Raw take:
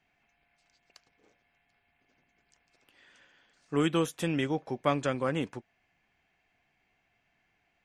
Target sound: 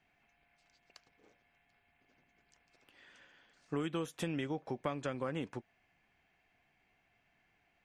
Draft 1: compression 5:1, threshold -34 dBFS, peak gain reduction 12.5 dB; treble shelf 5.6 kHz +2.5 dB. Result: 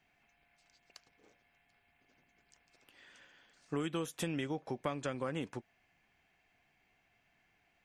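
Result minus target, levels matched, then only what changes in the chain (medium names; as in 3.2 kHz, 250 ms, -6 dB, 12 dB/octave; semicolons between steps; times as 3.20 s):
8 kHz band +4.5 dB
change: treble shelf 5.6 kHz -5 dB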